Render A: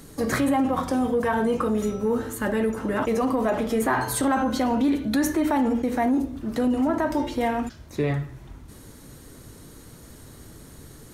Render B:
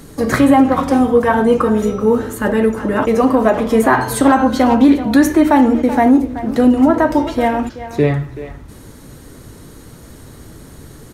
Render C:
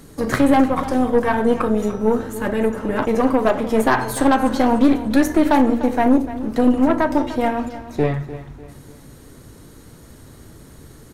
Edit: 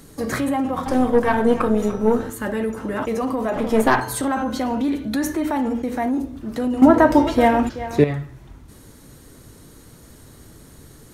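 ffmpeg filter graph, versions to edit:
-filter_complex "[2:a]asplit=2[a][b];[0:a]asplit=4[c][d][e][f];[c]atrim=end=0.862[g];[a]atrim=start=0.858:end=2.302[h];[d]atrim=start=2.298:end=3.562[i];[b]atrim=start=3.558:end=4.002[j];[e]atrim=start=3.998:end=6.822[k];[1:a]atrim=start=6.818:end=8.042[l];[f]atrim=start=8.038[m];[g][h]acrossfade=d=0.004:c1=hsin:c2=hsin[n];[n][i]acrossfade=d=0.004:c1=hsin:c2=hsin[o];[o][j]acrossfade=d=0.004:c1=hsin:c2=hsin[p];[p][k]acrossfade=d=0.004:c1=hsin:c2=hsin[q];[q][l]acrossfade=d=0.004:c1=hsin:c2=hsin[r];[r][m]acrossfade=d=0.004:c1=hsin:c2=hsin"

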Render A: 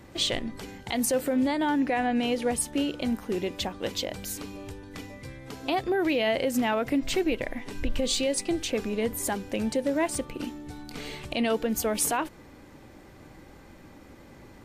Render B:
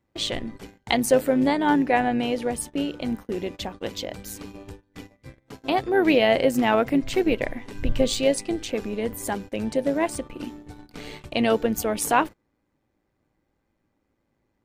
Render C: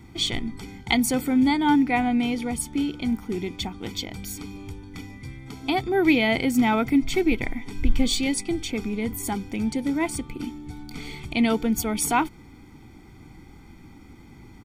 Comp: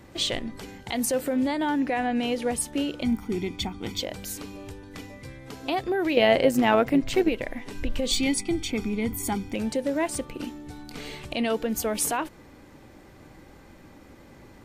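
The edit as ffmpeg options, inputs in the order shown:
-filter_complex "[2:a]asplit=2[a][b];[0:a]asplit=4[c][d][e][f];[c]atrim=end=3.032[g];[a]atrim=start=3.028:end=4.002[h];[d]atrim=start=3.998:end=6.172[i];[1:a]atrim=start=6.168:end=7.292[j];[e]atrim=start=7.288:end=8.112[k];[b]atrim=start=8.108:end=9.552[l];[f]atrim=start=9.548[m];[g][h]acrossfade=d=0.004:c1=hsin:c2=hsin[n];[n][i]acrossfade=d=0.004:c1=hsin:c2=hsin[o];[o][j]acrossfade=d=0.004:c1=hsin:c2=hsin[p];[p][k]acrossfade=d=0.004:c1=hsin:c2=hsin[q];[q][l]acrossfade=d=0.004:c1=hsin:c2=hsin[r];[r][m]acrossfade=d=0.004:c1=hsin:c2=hsin"

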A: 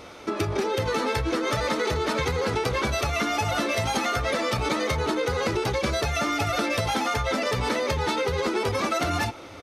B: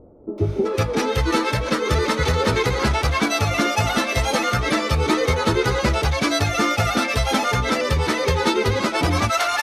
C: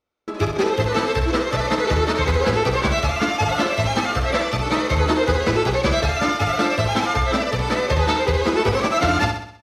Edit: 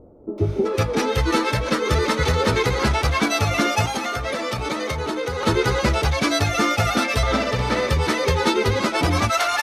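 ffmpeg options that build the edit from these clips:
-filter_complex "[1:a]asplit=3[a][b][c];[a]atrim=end=3.862[d];[0:a]atrim=start=3.858:end=5.432[e];[b]atrim=start=5.428:end=7.232[f];[2:a]atrim=start=7.228:end=7.892[g];[c]atrim=start=7.888[h];[d][e]acrossfade=d=0.004:c1=hsin:c2=hsin[i];[i][f]acrossfade=d=0.004:c1=hsin:c2=hsin[j];[j][g]acrossfade=d=0.004:c1=hsin:c2=hsin[k];[k][h]acrossfade=d=0.004:c1=hsin:c2=hsin"

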